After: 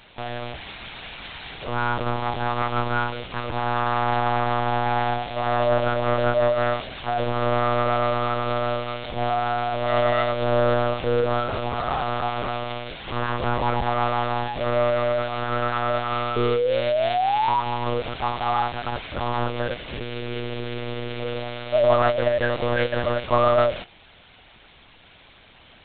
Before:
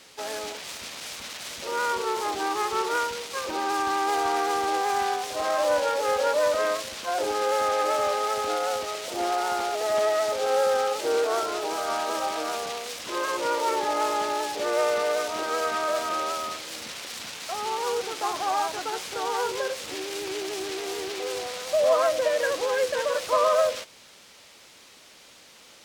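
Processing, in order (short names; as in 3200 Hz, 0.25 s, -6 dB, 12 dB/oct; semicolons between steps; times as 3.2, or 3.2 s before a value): painted sound rise, 16.36–17.61, 400–1000 Hz -24 dBFS; monotone LPC vocoder at 8 kHz 120 Hz; gain +3 dB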